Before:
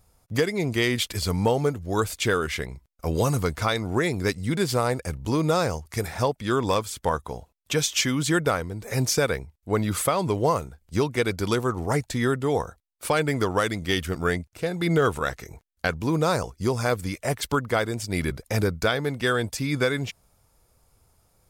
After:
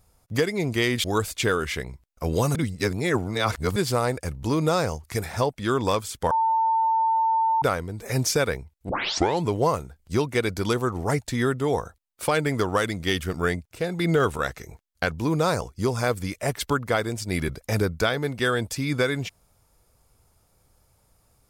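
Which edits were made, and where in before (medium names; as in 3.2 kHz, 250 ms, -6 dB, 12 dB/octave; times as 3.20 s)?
1.04–1.86 s: delete
3.37–4.58 s: reverse
7.13–8.44 s: bleep 897 Hz -18.5 dBFS
9.71 s: tape start 0.54 s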